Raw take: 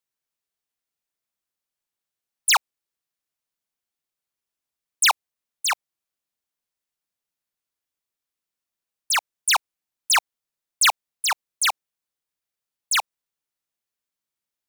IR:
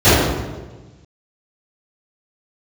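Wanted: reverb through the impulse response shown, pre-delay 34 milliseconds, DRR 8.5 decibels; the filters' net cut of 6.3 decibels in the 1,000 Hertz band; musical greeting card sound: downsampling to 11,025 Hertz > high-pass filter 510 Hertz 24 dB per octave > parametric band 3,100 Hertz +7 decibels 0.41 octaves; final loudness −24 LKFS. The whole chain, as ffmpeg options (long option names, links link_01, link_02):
-filter_complex "[0:a]equalizer=frequency=1000:width_type=o:gain=-8,asplit=2[link_01][link_02];[1:a]atrim=start_sample=2205,adelay=34[link_03];[link_02][link_03]afir=irnorm=-1:irlink=0,volume=-39dB[link_04];[link_01][link_04]amix=inputs=2:normalize=0,aresample=11025,aresample=44100,highpass=frequency=510:width=0.5412,highpass=frequency=510:width=1.3066,equalizer=frequency=3100:width_type=o:width=0.41:gain=7,volume=-2dB"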